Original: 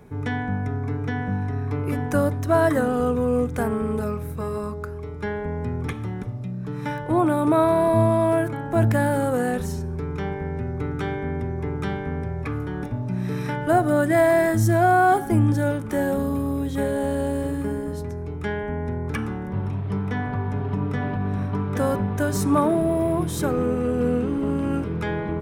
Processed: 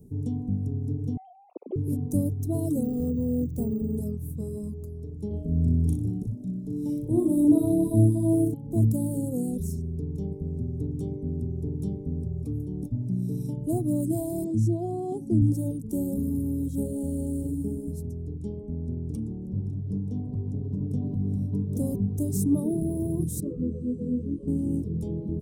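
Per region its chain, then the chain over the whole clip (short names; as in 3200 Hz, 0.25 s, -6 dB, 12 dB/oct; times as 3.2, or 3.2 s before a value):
1.17–1.76 sine-wave speech + HPF 400 Hz 24 dB/oct
2.83–3.97 high shelf 8500 Hz -6.5 dB + careless resampling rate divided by 2×, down filtered, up hold
5.27–8.54 doubler 37 ms -2.5 dB + flutter echo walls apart 10.5 m, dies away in 0.6 s
14.44–15.42 HPF 100 Hz + air absorption 94 m + notch 1200 Hz, Q 22
18.37–20.91 LPF 8300 Hz + tube stage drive 18 dB, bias 0.4
23.4–24.48 Butterworth band-stop 800 Hz, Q 2.7 + air absorption 91 m + detuned doubles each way 28 cents
whole clip: Chebyshev band-stop 270–8900 Hz, order 2; reverb removal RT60 0.52 s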